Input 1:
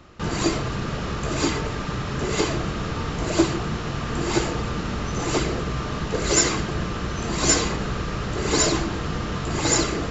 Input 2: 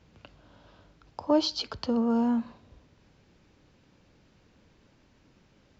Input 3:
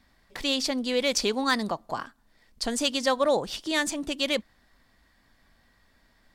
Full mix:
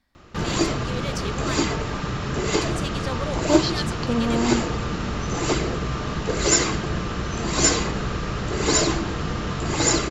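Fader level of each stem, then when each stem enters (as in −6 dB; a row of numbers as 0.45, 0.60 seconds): +0.5, +2.0, −8.5 decibels; 0.15, 2.20, 0.00 seconds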